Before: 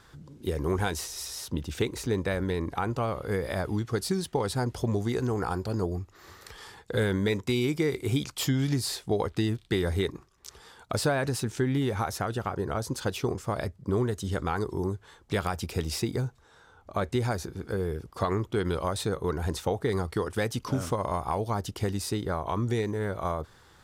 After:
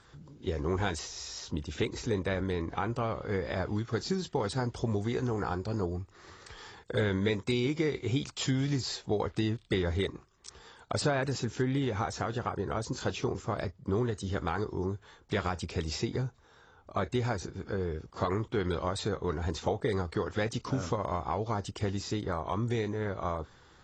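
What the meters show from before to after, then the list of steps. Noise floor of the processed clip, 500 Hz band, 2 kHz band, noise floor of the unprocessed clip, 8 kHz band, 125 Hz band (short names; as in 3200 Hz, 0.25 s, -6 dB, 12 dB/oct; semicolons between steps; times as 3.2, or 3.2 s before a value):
-60 dBFS, -2.5 dB, -2.0 dB, -58 dBFS, -5.0 dB, -3.0 dB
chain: gain -3 dB; AAC 24 kbps 24000 Hz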